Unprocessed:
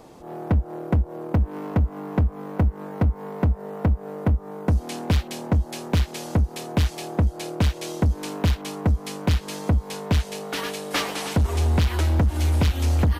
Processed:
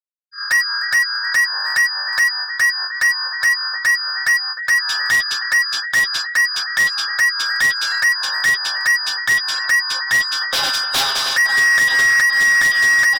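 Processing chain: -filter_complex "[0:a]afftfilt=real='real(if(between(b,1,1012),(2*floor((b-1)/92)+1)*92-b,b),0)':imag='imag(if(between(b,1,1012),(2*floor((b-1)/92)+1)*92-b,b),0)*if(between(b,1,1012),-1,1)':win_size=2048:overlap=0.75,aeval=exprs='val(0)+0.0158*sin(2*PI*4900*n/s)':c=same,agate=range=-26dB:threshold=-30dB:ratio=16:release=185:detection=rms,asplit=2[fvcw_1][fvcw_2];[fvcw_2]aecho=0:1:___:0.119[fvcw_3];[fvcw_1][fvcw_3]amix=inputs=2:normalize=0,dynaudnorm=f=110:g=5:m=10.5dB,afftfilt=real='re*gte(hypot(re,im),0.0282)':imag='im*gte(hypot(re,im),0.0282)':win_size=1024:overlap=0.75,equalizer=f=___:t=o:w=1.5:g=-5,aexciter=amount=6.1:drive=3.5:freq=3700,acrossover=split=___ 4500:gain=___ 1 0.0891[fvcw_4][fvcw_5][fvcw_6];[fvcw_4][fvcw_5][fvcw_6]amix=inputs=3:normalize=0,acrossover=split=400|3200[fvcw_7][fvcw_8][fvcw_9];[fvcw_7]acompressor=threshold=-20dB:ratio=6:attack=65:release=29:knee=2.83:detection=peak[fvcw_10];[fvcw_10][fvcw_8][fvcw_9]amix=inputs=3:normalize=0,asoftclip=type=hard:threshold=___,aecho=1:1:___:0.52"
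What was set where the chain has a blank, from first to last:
305, 290, 370, 0.224, -15dB, 7.4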